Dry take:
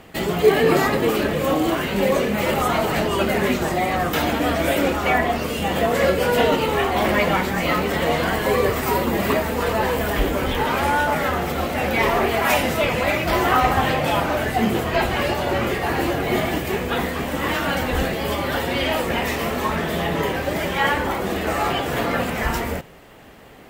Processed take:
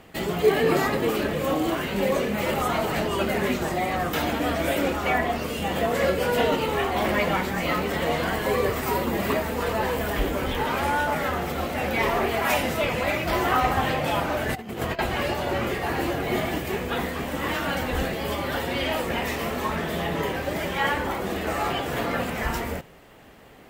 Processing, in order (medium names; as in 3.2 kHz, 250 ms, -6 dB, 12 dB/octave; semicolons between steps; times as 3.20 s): 14.49–14.99 s: compressor with a negative ratio -25 dBFS, ratio -0.5; trim -4.5 dB